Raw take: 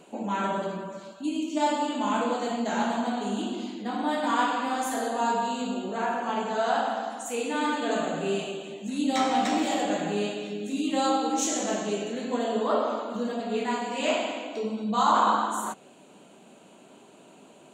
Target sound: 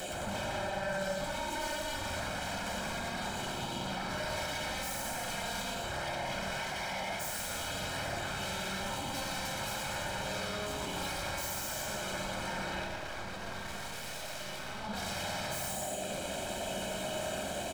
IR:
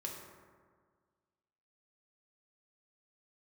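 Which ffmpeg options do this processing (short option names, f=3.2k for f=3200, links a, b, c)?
-filter_complex "[0:a]acompressor=mode=upward:threshold=-28dB:ratio=2.5,asuperstop=centerf=1300:order=20:qfactor=0.89,alimiter=level_in=1dB:limit=-24dB:level=0:latency=1:release=143,volume=-1dB,acompressor=threshold=-34dB:ratio=3,highpass=290,aecho=1:1:120|216|292.8|354.2|403.4:0.631|0.398|0.251|0.158|0.1,aeval=exprs='0.0106*(abs(mod(val(0)/0.0106+3,4)-2)-1)':c=same,aecho=1:1:1.3:0.67,asettb=1/sr,asplit=3[a][b][c];[a]atrim=end=12.844[d];[b]atrim=start=12.84:end=14.84,asetpts=PTS-STARTPTS,afade=t=in:d=0.004:c=qsin,afade=t=out:st=1.996:d=0.004:c=qsin,aeval=exprs='max(val(0),0)':c=same[e];[c]atrim=start=14.836[f];[d][e]acrossfade=d=0.004:c1=hsin:c2=qsin[g];[g][f]acrossfade=d=0.004:c1=qsin:c2=hsin[h];[1:a]atrim=start_sample=2205[i];[h][i]afir=irnorm=-1:irlink=0,volume=7dB"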